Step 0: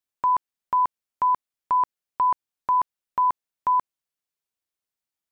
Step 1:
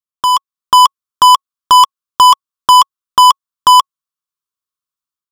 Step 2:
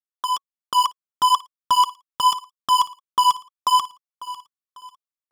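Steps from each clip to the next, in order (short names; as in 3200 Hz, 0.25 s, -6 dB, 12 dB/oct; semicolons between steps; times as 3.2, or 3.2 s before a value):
EQ curve 140 Hz 0 dB, 430 Hz -3 dB, 800 Hz -11 dB, 1100 Hz +12 dB, 2000 Hz -6 dB, 3300 Hz +2 dB; sample leveller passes 5; AGC gain up to 8 dB
feedback echo 0.547 s, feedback 35%, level -17 dB; tape flanging out of phase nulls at 1.8 Hz, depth 3 ms; gain -9 dB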